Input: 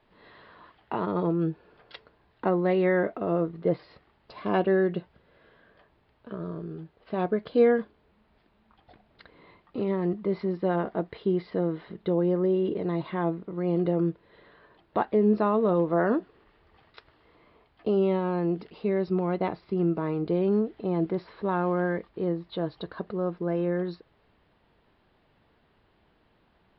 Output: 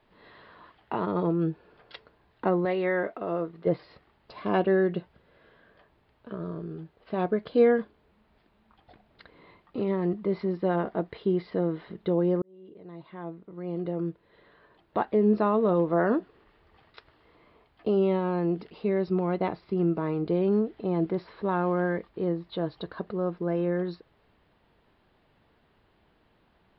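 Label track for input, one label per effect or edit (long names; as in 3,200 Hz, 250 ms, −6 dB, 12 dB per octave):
2.650000	3.670000	low-shelf EQ 320 Hz −10 dB
12.420000	15.340000	fade in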